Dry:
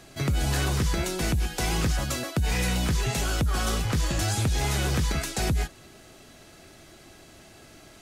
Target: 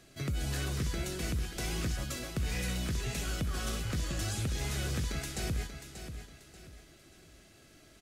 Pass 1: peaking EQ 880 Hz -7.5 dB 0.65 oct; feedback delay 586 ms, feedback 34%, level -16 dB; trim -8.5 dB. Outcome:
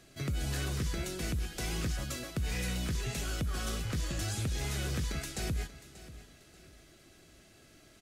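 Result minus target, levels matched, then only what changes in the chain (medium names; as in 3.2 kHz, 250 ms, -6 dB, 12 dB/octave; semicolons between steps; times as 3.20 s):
echo-to-direct -6.5 dB
change: feedback delay 586 ms, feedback 34%, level -9.5 dB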